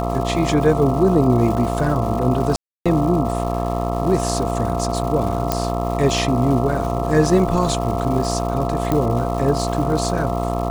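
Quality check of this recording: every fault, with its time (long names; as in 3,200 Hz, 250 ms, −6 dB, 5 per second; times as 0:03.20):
mains buzz 60 Hz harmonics 22 −23 dBFS
surface crackle 400 per second −28 dBFS
whistle 690 Hz −25 dBFS
0:02.56–0:02.86: drop-out 296 ms
0:05.52: click −3 dBFS
0:08.92: click −7 dBFS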